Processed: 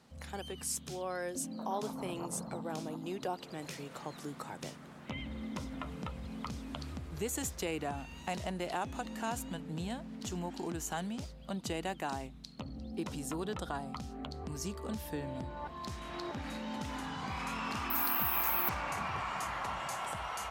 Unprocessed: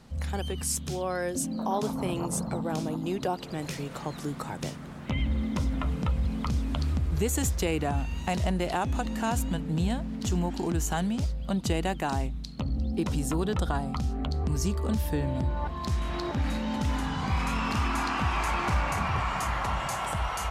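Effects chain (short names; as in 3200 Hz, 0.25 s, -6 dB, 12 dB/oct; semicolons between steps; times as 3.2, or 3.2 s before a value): HPF 250 Hz 6 dB/oct; 17.9–18.69 careless resampling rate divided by 3×, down filtered, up zero stuff; gain -6.5 dB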